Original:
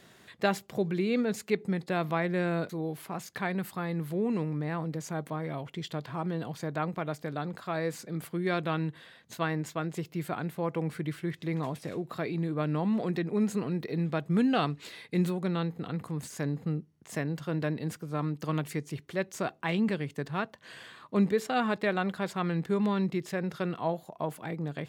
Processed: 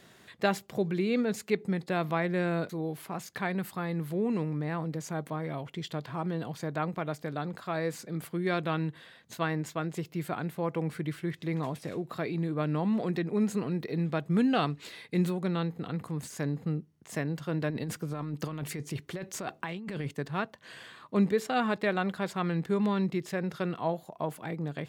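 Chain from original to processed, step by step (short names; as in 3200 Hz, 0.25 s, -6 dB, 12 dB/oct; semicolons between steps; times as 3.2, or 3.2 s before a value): 17.7–20.12 negative-ratio compressor -35 dBFS, ratio -1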